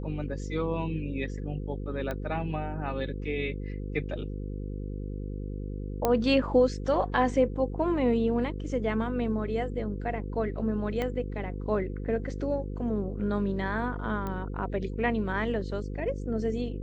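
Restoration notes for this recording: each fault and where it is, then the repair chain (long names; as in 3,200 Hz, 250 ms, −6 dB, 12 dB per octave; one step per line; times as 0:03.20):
mains buzz 50 Hz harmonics 10 −35 dBFS
0:02.11: click −20 dBFS
0:06.05: click −11 dBFS
0:11.02: click −18 dBFS
0:14.27: click −22 dBFS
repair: click removal
hum removal 50 Hz, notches 10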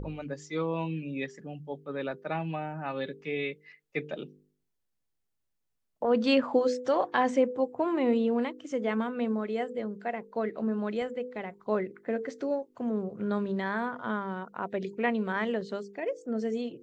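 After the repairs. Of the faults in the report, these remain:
0:02.11: click
0:11.02: click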